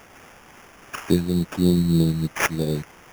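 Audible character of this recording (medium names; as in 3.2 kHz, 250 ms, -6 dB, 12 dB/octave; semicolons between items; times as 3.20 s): a quantiser's noise floor 8-bit, dither triangular; phasing stages 2, 3.1 Hz, lowest notch 430–4100 Hz; aliases and images of a low sample rate 4.1 kHz, jitter 0%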